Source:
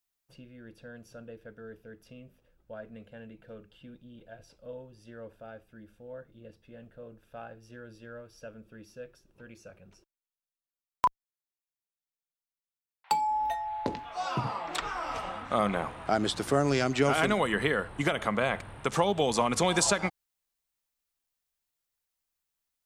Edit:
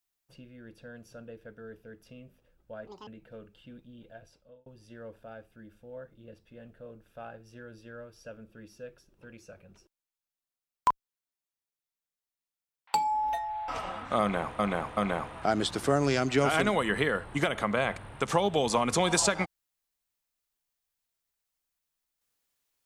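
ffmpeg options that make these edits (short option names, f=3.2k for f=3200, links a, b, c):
-filter_complex "[0:a]asplit=7[a][b][c][d][e][f][g];[a]atrim=end=2.874[h];[b]atrim=start=2.87:end=3.24,asetpts=PTS-STARTPTS,asetrate=81144,aresample=44100[i];[c]atrim=start=3.236:end=4.83,asetpts=PTS-STARTPTS,afade=t=out:st=1.054:d=0.54[j];[d]atrim=start=4.83:end=13.852,asetpts=PTS-STARTPTS,afade=t=in:d=0.004:c=hsin[k];[e]atrim=start=15.078:end=15.992[l];[f]atrim=start=15.608:end=15.992[m];[g]atrim=start=15.608[n];[h][i]acrossfade=d=0.004:c1=hsin:c2=hsin[o];[j][k]concat=n=2:v=0:a=1[p];[o][p]acrossfade=d=0.004:c1=hsin:c2=hsin[q];[q][l]acrossfade=d=0.004:c1=hsin:c2=hsin[r];[r][m]acrossfade=d=0.004:c1=hsin:c2=hsin[s];[s][n]acrossfade=d=0.004:c1=hsin:c2=hsin"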